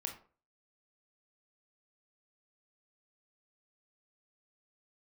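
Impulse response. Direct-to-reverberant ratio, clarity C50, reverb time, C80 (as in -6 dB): 2.5 dB, 9.0 dB, 0.40 s, 14.0 dB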